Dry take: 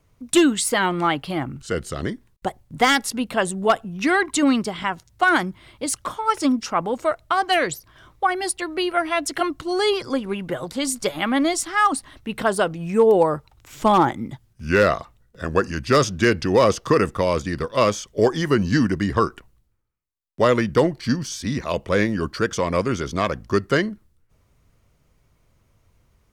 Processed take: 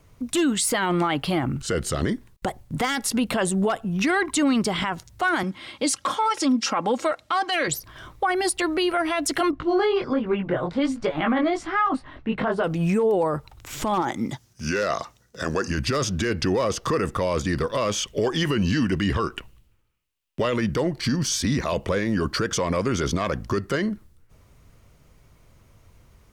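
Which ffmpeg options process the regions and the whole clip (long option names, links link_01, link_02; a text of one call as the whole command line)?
ffmpeg -i in.wav -filter_complex "[0:a]asettb=1/sr,asplit=3[link_01][link_02][link_03];[link_01]atrim=end=5.434[link_04];[link_02]atrim=start=5.43:end=7.68,asetpts=PTS-STARTPTS,afade=type=in:duration=0.004:curve=qsin,afade=type=out:start_time=2.246:duration=0.004:curve=qsin,highpass=150,lowpass=4400,aemphasis=mode=production:type=75fm,aecho=1:1:3.7:0.4,atrim=end_sample=99225[link_05];[link_03]atrim=start=7.676[link_06];[link_04][link_05]acrossfade=duration=0.004:curve1=hsin:curve2=qsin[link_07];[link_07][link_06]acrossfade=duration=0.004:curve1=qsin:curve2=hsin,asettb=1/sr,asplit=3[link_08][link_09][link_10];[link_08]atrim=end=9.514[link_11];[link_09]atrim=start=9.51:end=12.64,asetpts=PTS-STARTPTS,afade=type=in:duration=0.004:curve=qsin,afade=type=out:start_time=3.126:duration=0.004:curve=qsin,lowpass=2200,flanger=delay=17.5:depth=6.1:speed=1.3[link_12];[link_10]atrim=start=12.636[link_13];[link_11][link_12]acrossfade=duration=0.004:curve1=hsin:curve2=qsin[link_14];[link_14][link_13]acrossfade=duration=0.004:curve1=qsin:curve2=hsin,asettb=1/sr,asplit=3[link_15][link_16][link_17];[link_15]atrim=end=14.024[link_18];[link_16]atrim=start=14.02:end=15.68,asetpts=PTS-STARTPTS,afade=type=in:duration=0.004:curve=qsin,afade=type=out:start_time=1.656:duration=0.004:curve=qsin,highpass=frequency=220:poles=1,equalizer=frequency=5900:width=1.8:gain=10.5[link_19];[link_17]atrim=start=15.676[link_20];[link_18][link_19]acrossfade=duration=0.004:curve1=hsin:curve2=qsin[link_21];[link_21][link_20]acrossfade=duration=0.004:curve1=qsin:curve2=hsin,asettb=1/sr,asplit=3[link_22][link_23][link_24];[link_22]atrim=end=17.914[link_25];[link_23]atrim=start=17.91:end=20.56,asetpts=PTS-STARTPTS,afade=type=in:duration=0.004:curve=qsin,afade=type=out:start_time=2.646:duration=0.004:curve=qsin,equalizer=frequency=2800:width_type=o:width=0.54:gain=9.5,bandreject=frequency=740:width=23[link_26];[link_24]atrim=start=20.556[link_27];[link_25][link_26]acrossfade=duration=0.004:curve1=hsin:curve2=qsin[link_28];[link_28][link_27]acrossfade=duration=0.004:curve1=qsin:curve2=hsin,acompressor=threshold=-22dB:ratio=5,alimiter=limit=-21.5dB:level=0:latency=1:release=14,volume=7dB" out.wav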